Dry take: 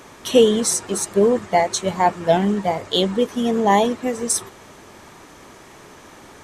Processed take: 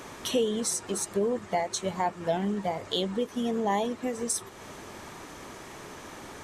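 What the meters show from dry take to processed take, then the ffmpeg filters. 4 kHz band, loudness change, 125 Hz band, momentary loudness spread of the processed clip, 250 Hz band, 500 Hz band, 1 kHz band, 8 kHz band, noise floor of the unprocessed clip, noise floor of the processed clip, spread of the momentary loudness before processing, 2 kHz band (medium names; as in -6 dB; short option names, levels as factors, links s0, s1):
-9.5 dB, -10.5 dB, -9.5 dB, 16 LU, -10.0 dB, -11.5 dB, -11.0 dB, -8.5 dB, -45 dBFS, -46 dBFS, 6 LU, -10.0 dB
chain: -af "acompressor=threshold=0.02:ratio=2"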